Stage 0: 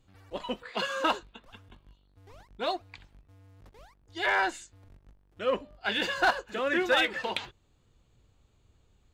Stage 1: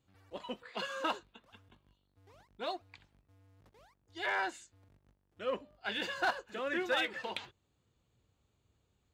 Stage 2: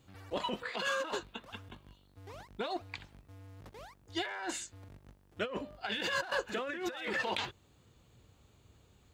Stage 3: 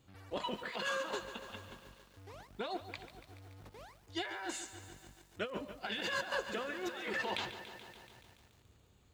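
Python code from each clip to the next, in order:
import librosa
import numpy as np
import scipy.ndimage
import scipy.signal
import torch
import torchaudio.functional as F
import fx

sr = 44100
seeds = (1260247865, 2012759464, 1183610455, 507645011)

y1 = scipy.signal.sosfilt(scipy.signal.butter(2, 73.0, 'highpass', fs=sr, output='sos'), x)
y1 = F.gain(torch.from_numpy(y1), -7.5).numpy()
y2 = fx.over_compress(y1, sr, threshold_db=-43.0, ratio=-1.0)
y2 = F.gain(torch.from_numpy(y2), 6.5).numpy()
y3 = fx.echo_crushed(y2, sr, ms=143, feedback_pct=80, bits=9, wet_db=-12.0)
y3 = F.gain(torch.from_numpy(y3), -3.0).numpy()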